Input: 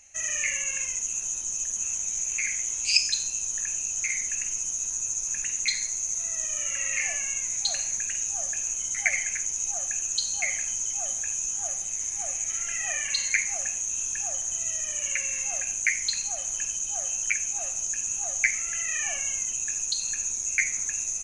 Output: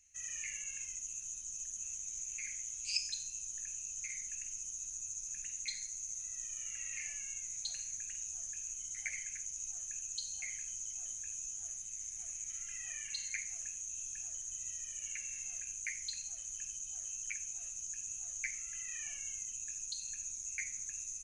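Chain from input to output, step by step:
guitar amp tone stack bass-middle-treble 6-0-2
level +1.5 dB

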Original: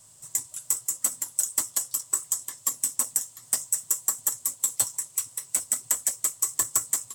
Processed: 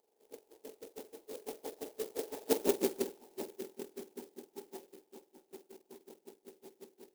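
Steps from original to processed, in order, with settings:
frequency axis turned over on the octave scale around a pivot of 1,800 Hz
source passing by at 0:02.67, 21 m/s, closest 3.5 metres
pair of resonant band-passes 1,700 Hz, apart 2 octaves
converter with an unsteady clock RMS 0.12 ms
level +13 dB

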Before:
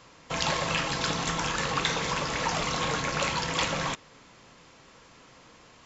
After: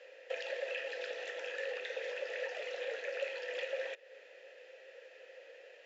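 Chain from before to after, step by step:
Butterworth high-pass 390 Hz 36 dB per octave
downward compressor 3 to 1, threshold −40 dBFS, peak gain reduction 13 dB
formant filter e
level +10.5 dB

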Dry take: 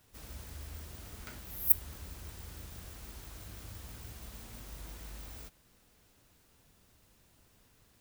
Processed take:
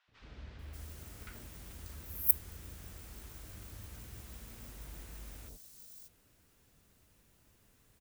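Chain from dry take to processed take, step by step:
three-band delay without the direct sound mids, lows, highs 80/590 ms, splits 860/4,200 Hz
level −1.5 dB

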